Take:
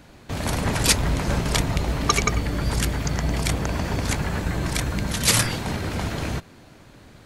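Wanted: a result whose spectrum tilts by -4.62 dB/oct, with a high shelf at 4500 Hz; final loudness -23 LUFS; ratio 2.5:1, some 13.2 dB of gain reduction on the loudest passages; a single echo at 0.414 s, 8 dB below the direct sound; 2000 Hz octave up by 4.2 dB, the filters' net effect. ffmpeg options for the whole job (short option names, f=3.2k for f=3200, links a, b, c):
-af "equalizer=f=2k:t=o:g=6.5,highshelf=f=4.5k:g=-7.5,acompressor=threshold=-35dB:ratio=2.5,aecho=1:1:414:0.398,volume=10.5dB"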